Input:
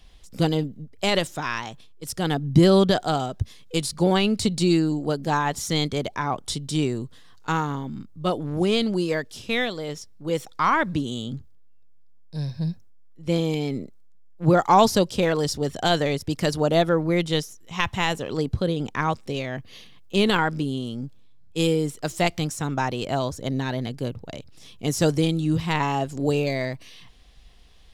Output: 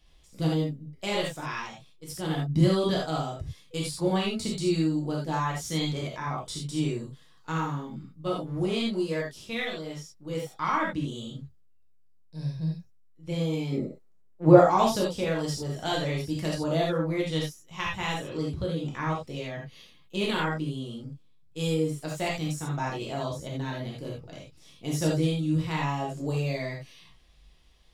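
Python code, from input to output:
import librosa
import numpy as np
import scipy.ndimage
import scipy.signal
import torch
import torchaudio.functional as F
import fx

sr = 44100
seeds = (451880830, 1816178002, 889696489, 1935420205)

y = fx.peak_eq(x, sr, hz=530.0, db=11.5, octaves=2.7, at=(13.72, 14.65))
y = fx.rev_gated(y, sr, seeds[0], gate_ms=110, shape='flat', drr_db=-4.0)
y = y * librosa.db_to_amplitude(-11.5)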